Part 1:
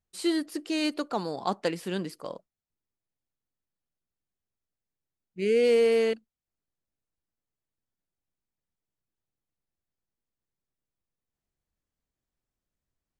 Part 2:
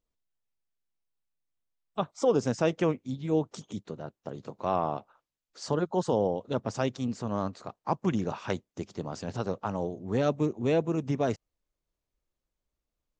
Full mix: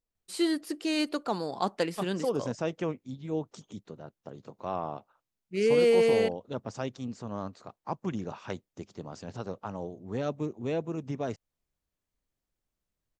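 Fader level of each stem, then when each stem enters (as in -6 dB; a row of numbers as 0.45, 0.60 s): -0.5, -5.5 dB; 0.15, 0.00 s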